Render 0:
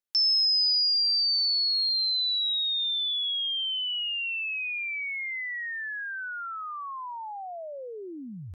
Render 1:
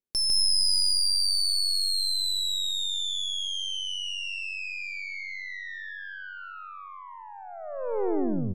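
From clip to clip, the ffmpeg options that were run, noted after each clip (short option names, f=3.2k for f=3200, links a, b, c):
-af "lowshelf=f=600:t=q:w=1.5:g=11.5,aeval=exprs='0.126*(cos(1*acos(clip(val(0)/0.126,-1,1)))-cos(1*PI/2))+0.0631*(cos(2*acos(clip(val(0)/0.126,-1,1)))-cos(2*PI/2))+0.00501*(cos(7*acos(clip(val(0)/0.126,-1,1)))-cos(7*PI/2))':c=same,aecho=1:1:151.6|227.4:0.794|0.282,volume=-4dB"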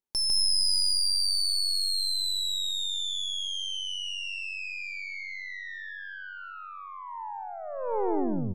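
-af "equalizer=f=890:w=3.7:g=9.5,volume=-1.5dB"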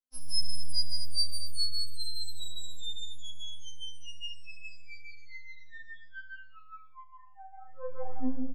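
-af "flanger=delay=20:depth=3.9:speed=0.32,aecho=1:1:20|43|69.45|99.87|134.8:0.631|0.398|0.251|0.158|0.1,afftfilt=real='re*3.46*eq(mod(b,12),0)':imag='im*3.46*eq(mod(b,12),0)':win_size=2048:overlap=0.75,volume=-7dB"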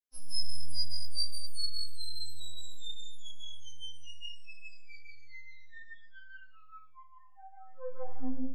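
-af "flanger=delay=17:depth=5.9:speed=0.65,volume=-1dB"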